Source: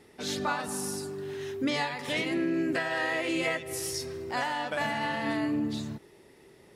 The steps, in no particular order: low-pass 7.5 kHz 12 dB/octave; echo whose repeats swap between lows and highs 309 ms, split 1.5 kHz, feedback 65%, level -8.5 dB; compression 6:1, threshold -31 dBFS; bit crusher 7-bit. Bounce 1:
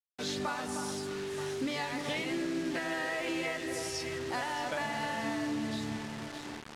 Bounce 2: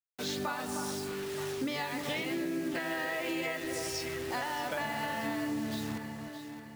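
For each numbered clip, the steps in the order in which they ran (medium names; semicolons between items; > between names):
echo whose repeats swap between lows and highs > compression > bit crusher > low-pass; low-pass > bit crusher > echo whose repeats swap between lows and highs > compression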